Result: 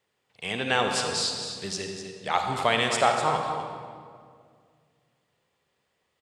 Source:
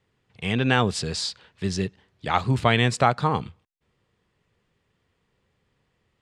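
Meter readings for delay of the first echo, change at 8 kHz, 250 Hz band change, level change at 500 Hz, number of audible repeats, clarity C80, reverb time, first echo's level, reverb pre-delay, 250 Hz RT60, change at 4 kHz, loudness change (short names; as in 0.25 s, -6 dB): 0.25 s, +3.0 dB, -9.0 dB, -1.0 dB, 1, 4.0 dB, 2.1 s, -9.0 dB, 36 ms, 2.5 s, +0.5 dB, -2.5 dB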